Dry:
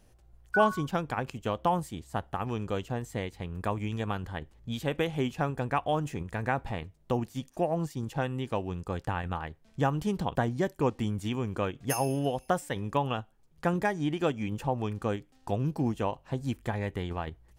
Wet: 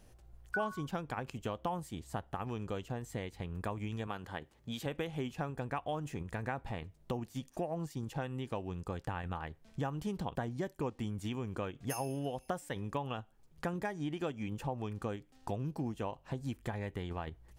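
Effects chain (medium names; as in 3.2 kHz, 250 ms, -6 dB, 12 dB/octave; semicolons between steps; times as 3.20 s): 4.07–4.86 s: high-pass 250 Hz 6 dB/octave; compression 2.5:1, threshold -39 dBFS, peak gain reduction 14 dB; trim +1 dB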